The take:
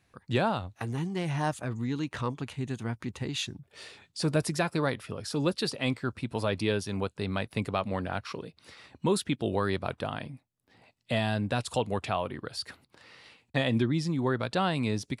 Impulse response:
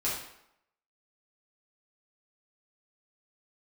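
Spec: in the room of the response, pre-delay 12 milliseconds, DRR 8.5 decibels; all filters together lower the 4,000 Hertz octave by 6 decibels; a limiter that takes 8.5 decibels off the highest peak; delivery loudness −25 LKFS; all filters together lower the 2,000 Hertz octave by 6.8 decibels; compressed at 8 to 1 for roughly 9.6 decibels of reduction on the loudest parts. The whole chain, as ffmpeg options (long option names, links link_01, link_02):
-filter_complex "[0:a]equalizer=frequency=2000:width_type=o:gain=-8,equalizer=frequency=4000:width_type=o:gain=-5,acompressor=threshold=-32dB:ratio=8,alimiter=level_in=5dB:limit=-24dB:level=0:latency=1,volume=-5dB,asplit=2[link_01][link_02];[1:a]atrim=start_sample=2205,adelay=12[link_03];[link_02][link_03]afir=irnorm=-1:irlink=0,volume=-15.5dB[link_04];[link_01][link_04]amix=inputs=2:normalize=0,volume=15dB"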